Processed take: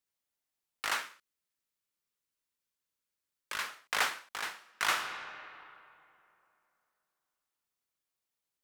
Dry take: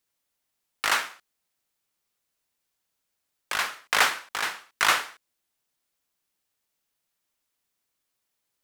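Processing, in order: 1.02–3.67 s: peaking EQ 740 Hz -13 dB 0.21 oct; 4.53–4.96 s: reverb throw, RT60 2.8 s, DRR 5 dB; trim -9 dB

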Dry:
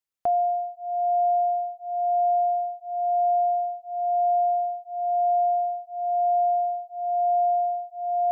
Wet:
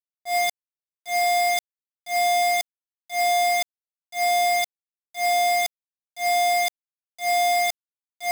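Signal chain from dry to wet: high-pass 590 Hz 6 dB/octave; echo that smears into a reverb 551 ms, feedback 60%, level -13.5 dB; bit crusher 4-bit; slow attack 108 ms; decay stretcher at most 26 dB/s

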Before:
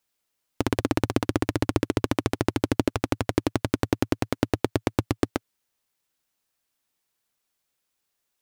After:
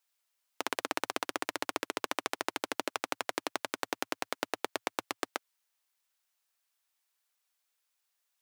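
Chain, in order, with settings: high-pass 750 Hz 12 dB/octave; trim -2 dB

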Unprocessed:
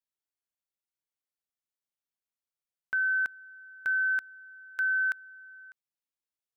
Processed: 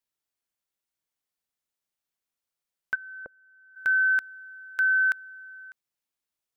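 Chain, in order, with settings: 2.94–3.75 s: resonant low-pass 410 Hz -> 760 Hz, resonance Q 4.9; trim +5 dB

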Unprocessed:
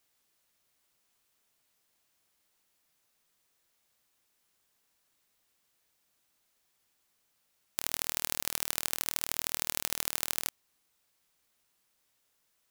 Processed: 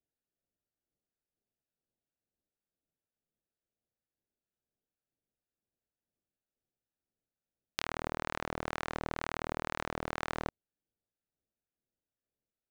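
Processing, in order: local Wiener filter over 41 samples; low-pass that closes with the level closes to 1.3 kHz, closed at -46.5 dBFS; 7.85–10.19 s: compressor with a negative ratio -47 dBFS, ratio -0.5; waveshaping leveller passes 3; harmonic tremolo 2.1 Hz, depth 50%, crossover 870 Hz; trim +1 dB

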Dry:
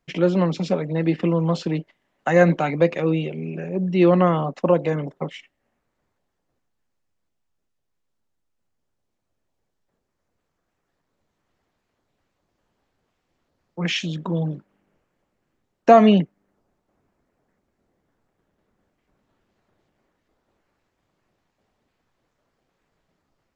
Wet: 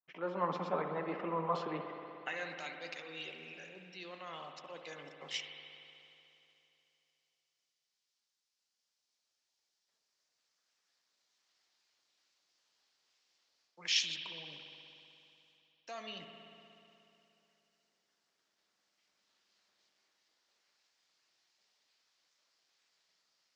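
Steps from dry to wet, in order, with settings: fade-in on the opening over 0.52 s; reverse; compression 5:1, threshold -31 dBFS, peak gain reduction 21 dB; reverse; band-pass sweep 1.1 kHz -> 5 kHz, 1.87–2.58 s; spring tank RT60 3 s, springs 60 ms, chirp 70 ms, DRR 4.5 dB; trim +10.5 dB

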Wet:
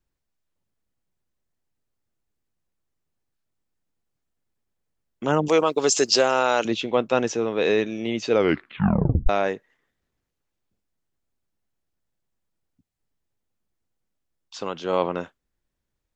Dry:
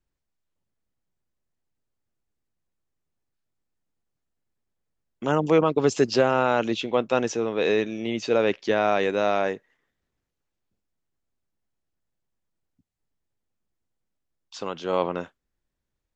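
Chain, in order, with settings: 5.48–6.65 s: tone controls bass -13 dB, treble +14 dB; 8.31 s: tape stop 0.98 s; trim +1.5 dB

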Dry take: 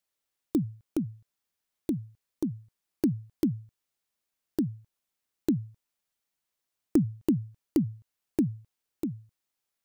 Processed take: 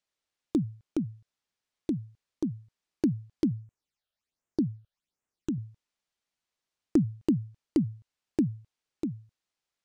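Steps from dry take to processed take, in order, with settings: treble shelf 4.7 kHz +7.5 dB; 3.51–5.58 s: phase shifter stages 8, 1.3 Hz, lowest notch 270–4400 Hz; distance through air 100 m

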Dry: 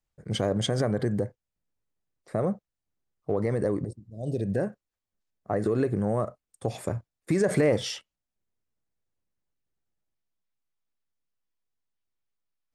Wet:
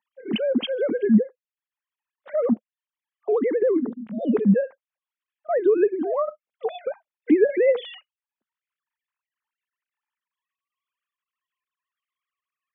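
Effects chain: formants replaced by sine waves; peaking EQ 220 Hz +12.5 dB 0.64 oct; three bands compressed up and down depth 40%; trim +3.5 dB

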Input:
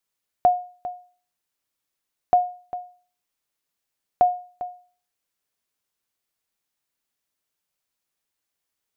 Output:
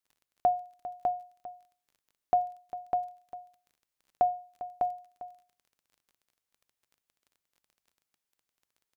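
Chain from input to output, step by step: on a send: delay 601 ms -4 dB; on the sum: crackle 24 per s -43 dBFS; hum notches 50/100/150 Hz; trim -7 dB

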